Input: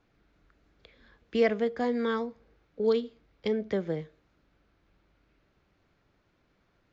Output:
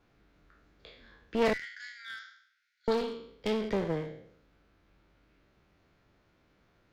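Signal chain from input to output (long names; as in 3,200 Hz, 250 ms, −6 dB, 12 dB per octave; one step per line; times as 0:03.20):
peak hold with a decay on every bin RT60 0.68 s
0:01.53–0:02.88: Chebyshev high-pass with heavy ripple 1,400 Hz, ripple 6 dB
asymmetric clip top −36 dBFS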